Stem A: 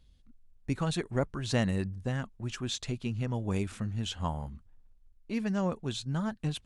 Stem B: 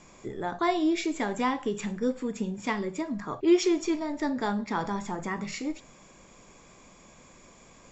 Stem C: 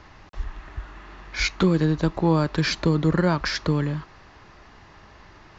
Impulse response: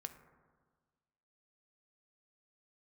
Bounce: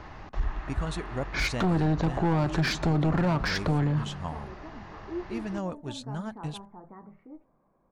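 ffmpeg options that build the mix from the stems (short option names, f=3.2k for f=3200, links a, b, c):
-filter_complex "[0:a]volume=-3.5dB[a];[1:a]lowpass=f=1.3k:w=0.5412,lowpass=f=1.3k:w=1.3066,adelay=1650,volume=-15.5dB,asplit=2[b][c];[c]volume=-13.5dB[d];[2:a]asoftclip=type=hard:threshold=-20.5dB,highshelf=f=2.6k:g=-9,volume=3dB,asplit=2[e][f];[f]volume=-9dB[g];[3:a]atrim=start_sample=2205[h];[d][g]amix=inputs=2:normalize=0[i];[i][h]afir=irnorm=-1:irlink=0[j];[a][b][e][j]amix=inputs=4:normalize=0,equalizer=f=740:w=2.6:g=3,alimiter=limit=-19.5dB:level=0:latency=1:release=28"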